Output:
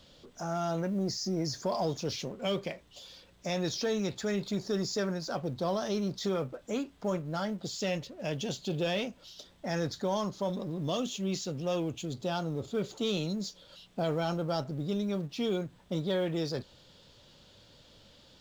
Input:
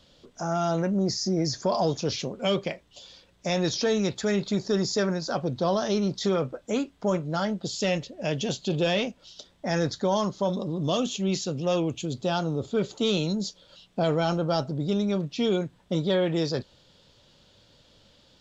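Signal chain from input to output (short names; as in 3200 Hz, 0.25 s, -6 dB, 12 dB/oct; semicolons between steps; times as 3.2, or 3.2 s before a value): G.711 law mismatch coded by mu; gain -7 dB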